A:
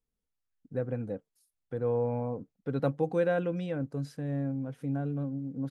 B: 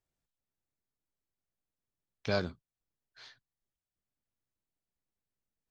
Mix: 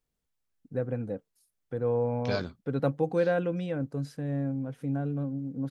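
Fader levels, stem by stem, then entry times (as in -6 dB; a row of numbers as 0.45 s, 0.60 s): +1.5 dB, -0.5 dB; 0.00 s, 0.00 s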